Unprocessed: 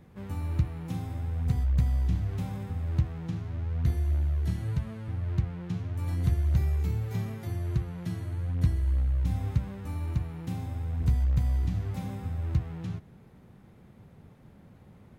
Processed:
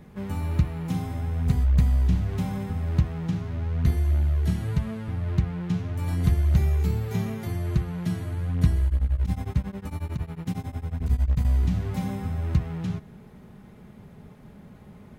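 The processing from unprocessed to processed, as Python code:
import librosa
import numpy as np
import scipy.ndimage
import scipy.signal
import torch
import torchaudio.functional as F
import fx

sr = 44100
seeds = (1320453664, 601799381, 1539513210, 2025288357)

y = x + 0.36 * np.pad(x, (int(4.8 * sr / 1000.0), 0))[:len(x)]
y = fx.tremolo_abs(y, sr, hz=11.0, at=(8.86, 11.45))
y = F.gain(torch.from_numpy(y), 6.0).numpy()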